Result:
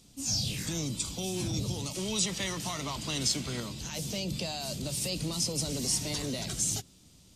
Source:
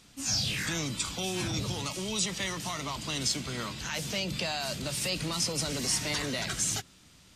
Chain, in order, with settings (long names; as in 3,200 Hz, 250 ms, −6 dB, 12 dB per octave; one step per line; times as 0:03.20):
parametric band 1,600 Hz −15 dB 1.8 octaves, from 0:01.95 −4.5 dB, from 0:03.60 −14 dB
level +1.5 dB